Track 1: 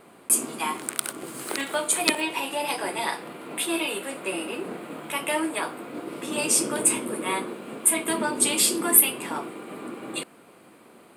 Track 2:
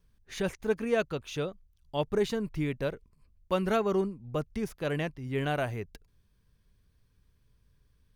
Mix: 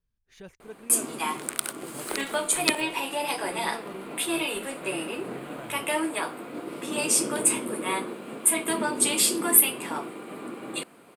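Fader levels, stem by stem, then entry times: -1.0, -14.5 dB; 0.60, 0.00 s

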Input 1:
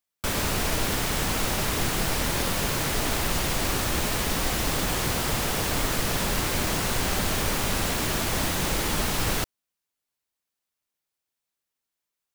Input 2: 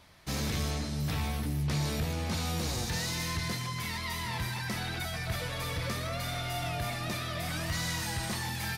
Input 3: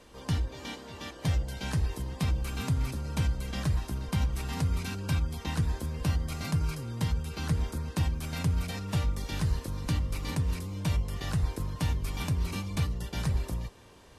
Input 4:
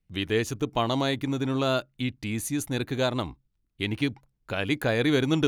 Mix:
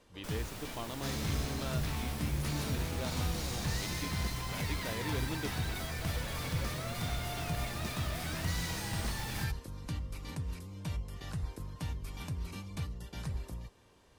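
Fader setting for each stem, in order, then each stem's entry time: -19.0, -5.5, -9.0, -16.5 dB; 0.00, 0.75, 0.00, 0.00 s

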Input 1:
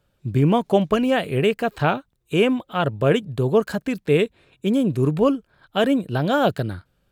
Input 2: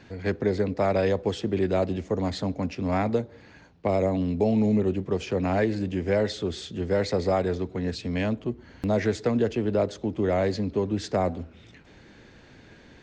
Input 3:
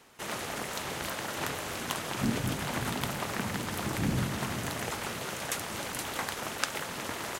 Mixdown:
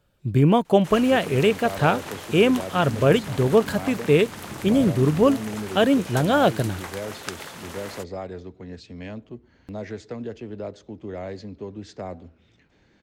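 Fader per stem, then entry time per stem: +0.5, -9.5, -2.5 dB; 0.00, 0.85, 0.65 s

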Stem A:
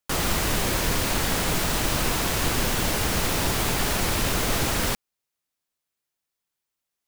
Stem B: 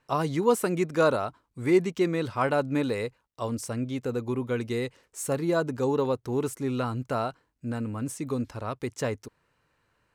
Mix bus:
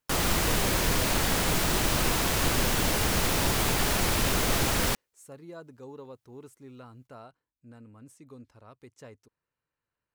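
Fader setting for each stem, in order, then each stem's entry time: -1.5, -18.5 dB; 0.00, 0.00 s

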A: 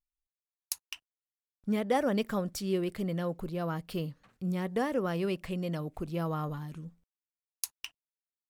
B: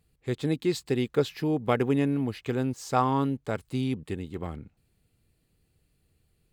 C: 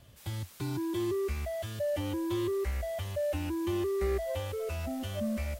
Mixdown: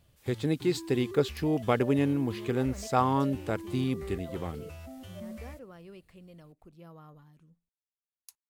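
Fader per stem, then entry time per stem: -17.5, -1.0, -9.5 dB; 0.65, 0.00, 0.00 s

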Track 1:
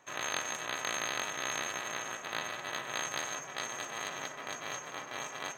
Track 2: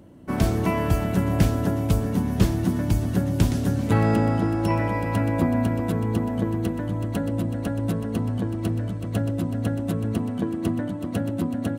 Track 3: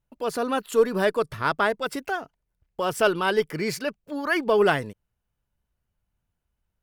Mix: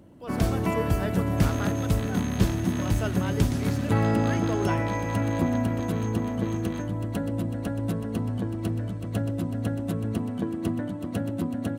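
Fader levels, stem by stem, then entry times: -6.5, -3.0, -13.0 dB; 1.30, 0.00, 0.00 s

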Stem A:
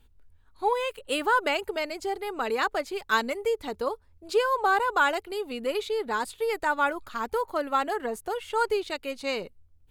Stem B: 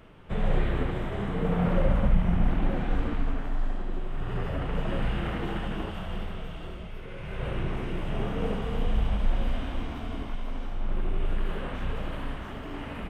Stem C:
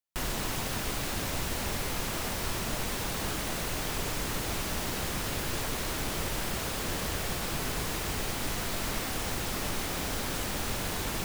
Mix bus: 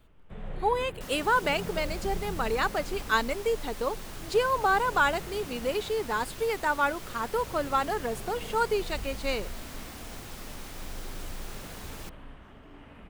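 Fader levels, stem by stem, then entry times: -1.0, -13.0, -10.5 dB; 0.00, 0.00, 0.85 s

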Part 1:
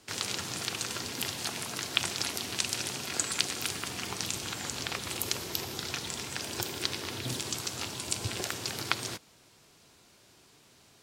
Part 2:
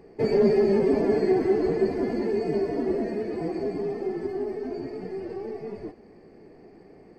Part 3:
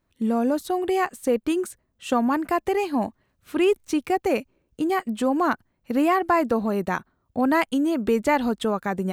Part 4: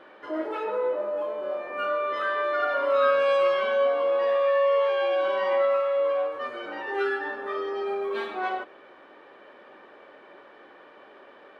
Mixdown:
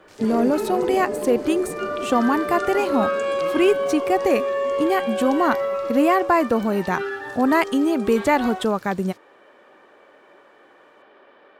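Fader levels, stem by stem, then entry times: -16.0, -7.0, +2.5, -1.5 dB; 0.00, 0.00, 0.00, 0.00 s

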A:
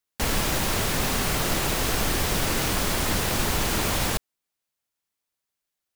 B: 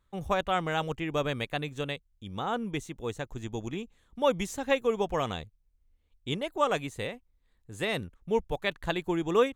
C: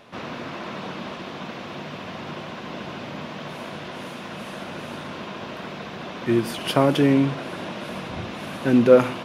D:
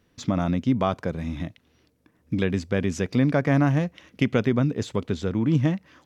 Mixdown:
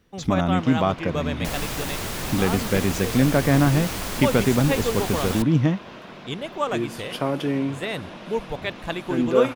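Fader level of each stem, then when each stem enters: -5.0, +1.0, -6.5, +2.0 dB; 1.25, 0.00, 0.45, 0.00 s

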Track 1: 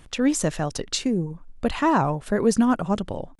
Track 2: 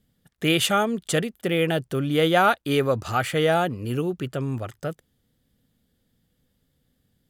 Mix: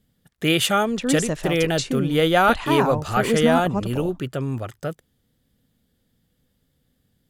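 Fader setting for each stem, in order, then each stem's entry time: -2.0, +1.5 dB; 0.85, 0.00 s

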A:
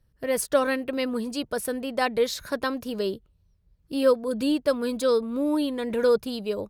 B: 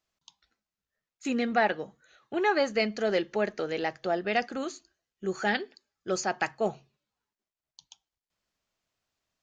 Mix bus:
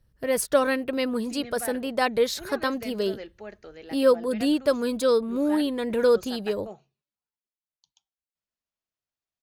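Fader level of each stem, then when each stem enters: +1.0, -13.0 dB; 0.00, 0.05 s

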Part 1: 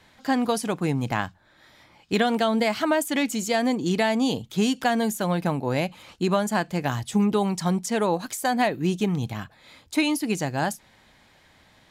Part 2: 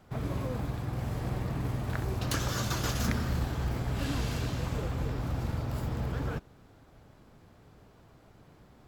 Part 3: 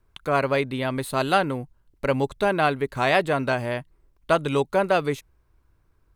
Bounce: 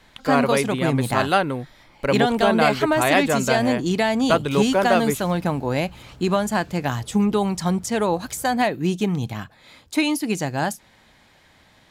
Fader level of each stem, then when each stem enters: +2.0, -14.5, +1.5 dB; 0.00, 2.25, 0.00 s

